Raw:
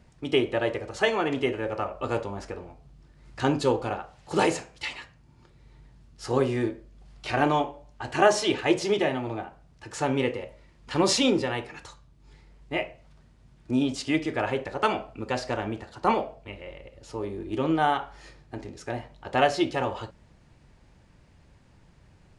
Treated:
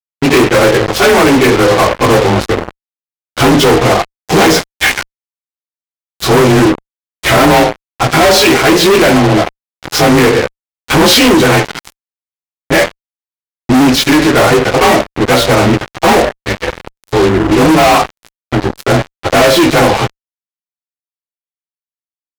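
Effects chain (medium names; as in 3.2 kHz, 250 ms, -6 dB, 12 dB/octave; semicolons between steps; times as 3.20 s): frequency axis rescaled in octaves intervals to 91%; fuzz box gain 41 dB, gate -41 dBFS; trim +8 dB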